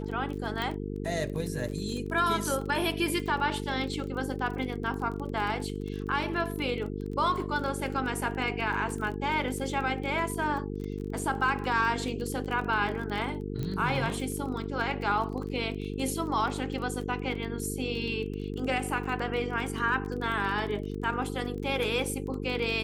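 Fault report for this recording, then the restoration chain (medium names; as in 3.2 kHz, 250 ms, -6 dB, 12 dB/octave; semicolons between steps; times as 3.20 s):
buzz 50 Hz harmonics 9 -35 dBFS
crackle 26 per s -35 dBFS
0.62 s: pop
13.63 s: pop -22 dBFS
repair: de-click; de-hum 50 Hz, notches 9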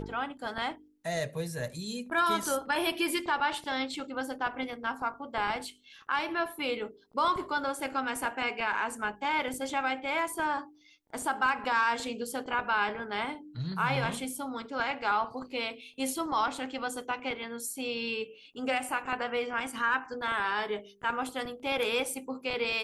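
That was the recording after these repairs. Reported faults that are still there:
13.63 s: pop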